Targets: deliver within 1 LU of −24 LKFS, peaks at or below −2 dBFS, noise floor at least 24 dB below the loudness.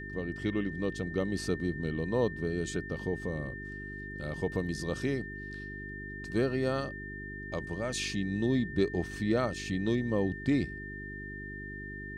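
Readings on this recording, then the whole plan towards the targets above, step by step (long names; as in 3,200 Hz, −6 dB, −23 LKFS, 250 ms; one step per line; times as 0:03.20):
mains hum 50 Hz; hum harmonics up to 400 Hz; level of the hum −42 dBFS; interfering tone 1,800 Hz; level of the tone −42 dBFS; integrated loudness −33.5 LKFS; sample peak −16.0 dBFS; target loudness −24.0 LKFS
→ hum removal 50 Hz, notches 8
notch filter 1,800 Hz, Q 30
level +9.5 dB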